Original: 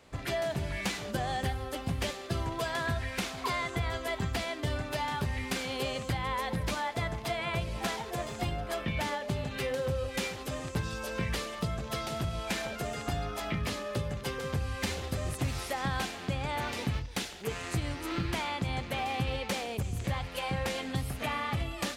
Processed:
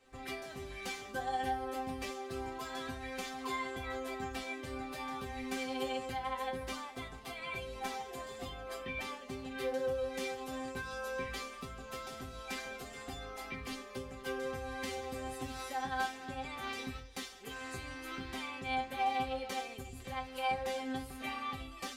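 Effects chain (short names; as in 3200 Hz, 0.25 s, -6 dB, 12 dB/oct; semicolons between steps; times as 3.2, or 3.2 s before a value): resonator bank C4 fifth, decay 0.21 s; gain +7.5 dB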